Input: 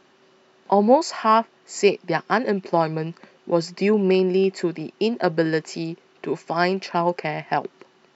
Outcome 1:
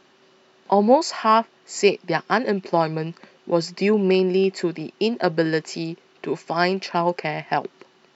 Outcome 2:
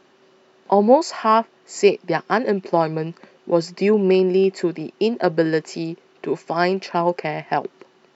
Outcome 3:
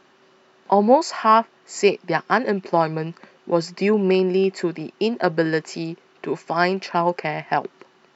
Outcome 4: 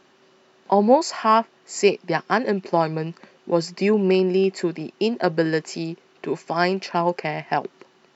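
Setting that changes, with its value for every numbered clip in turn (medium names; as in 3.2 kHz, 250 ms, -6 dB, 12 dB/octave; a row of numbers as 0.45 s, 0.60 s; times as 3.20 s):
peaking EQ, frequency: 4 kHz, 440 Hz, 1.3 kHz, 12 kHz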